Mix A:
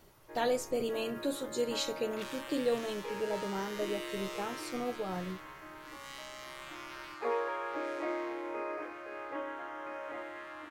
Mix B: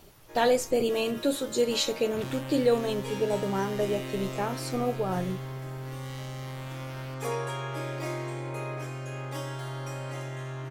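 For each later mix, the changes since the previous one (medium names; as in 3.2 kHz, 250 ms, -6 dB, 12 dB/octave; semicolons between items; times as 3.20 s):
speech +7.5 dB; first sound: remove inverse Chebyshev low-pass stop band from 5.4 kHz, stop band 50 dB; second sound: remove steep high-pass 1 kHz 48 dB/octave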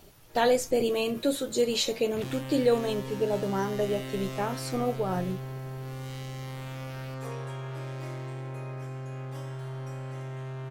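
first sound -10.0 dB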